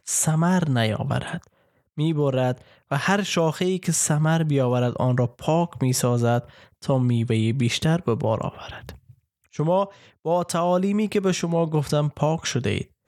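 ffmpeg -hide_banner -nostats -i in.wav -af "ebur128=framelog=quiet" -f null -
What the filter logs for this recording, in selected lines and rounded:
Integrated loudness:
  I:         -22.9 LUFS
  Threshold: -33.5 LUFS
Loudness range:
  LRA:         3.0 LU
  Threshold: -43.5 LUFS
  LRA low:   -25.2 LUFS
  LRA high:  -22.1 LUFS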